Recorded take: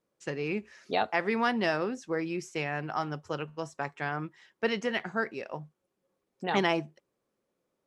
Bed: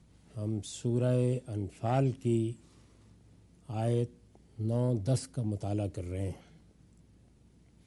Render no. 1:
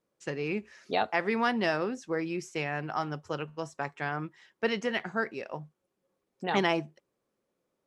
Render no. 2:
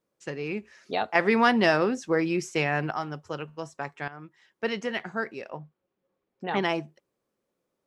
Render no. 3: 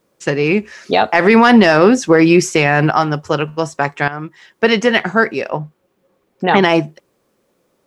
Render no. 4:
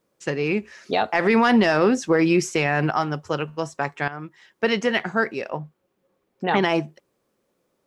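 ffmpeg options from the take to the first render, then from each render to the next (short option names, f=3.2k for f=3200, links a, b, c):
-af anull
-filter_complex "[0:a]asettb=1/sr,asplit=3[a][b][c];[a]atrim=end=1.154[d];[b]atrim=start=1.15:end=2.91,asetpts=PTS-STARTPTS,afade=t=in:d=0.004:c=qsin,afade=t=out:st=1.756:d=0.004:c=qsin,acontrast=78[e];[c]atrim=start=2.906[f];[d][e]acrossfade=d=0.004:c1=hsin:c2=qsin[g];[g][f]acrossfade=d=0.004:c1=qsin:c2=hsin,asettb=1/sr,asplit=3[h][i][j];[h]atrim=end=5.504[k];[i]atrim=start=5.5:end=6.63,asetpts=PTS-STARTPTS,afade=t=in:d=0.004:c=qsin,afade=t=out:st=1.126:d=0.004:c=qsin,lowpass=3.4k[l];[j]atrim=start=6.626[m];[k][l]acrossfade=d=0.004:c1=hsin:c2=qsin[n];[n][m]acrossfade=d=0.004:c1=qsin:c2=hsin,asplit=2[o][p];[o]atrim=end=4.08,asetpts=PTS-STARTPTS,afade=t=out:st=4.076:d=0.004:c=hsin:silence=0.211349[q];[p]atrim=start=4.08,asetpts=PTS-STARTPTS,afade=t=in:d=0.6:silence=0.211349[r];[q][r]concat=n=2:v=0:a=1"
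-af "acontrast=54,alimiter=level_in=11.5dB:limit=-1dB:release=50:level=0:latency=1"
-af "volume=-8.5dB"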